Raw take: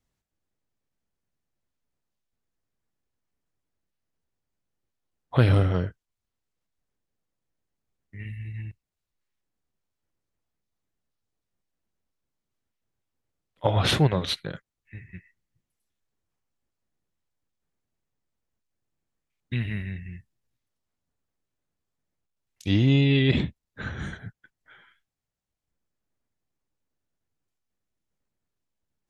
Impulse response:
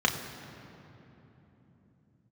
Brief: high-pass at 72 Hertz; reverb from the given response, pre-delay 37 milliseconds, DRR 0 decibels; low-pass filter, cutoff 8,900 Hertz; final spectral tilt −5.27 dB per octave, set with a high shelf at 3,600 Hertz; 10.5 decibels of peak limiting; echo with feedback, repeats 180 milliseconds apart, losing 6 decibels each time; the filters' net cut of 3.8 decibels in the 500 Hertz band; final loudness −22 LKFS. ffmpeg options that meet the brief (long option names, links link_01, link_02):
-filter_complex "[0:a]highpass=72,lowpass=8900,equalizer=frequency=500:width_type=o:gain=-5,highshelf=frequency=3600:gain=8.5,alimiter=limit=-15.5dB:level=0:latency=1,aecho=1:1:180|360|540|720|900|1080:0.501|0.251|0.125|0.0626|0.0313|0.0157,asplit=2[link_01][link_02];[1:a]atrim=start_sample=2205,adelay=37[link_03];[link_02][link_03]afir=irnorm=-1:irlink=0,volume=-12.5dB[link_04];[link_01][link_04]amix=inputs=2:normalize=0,volume=3.5dB"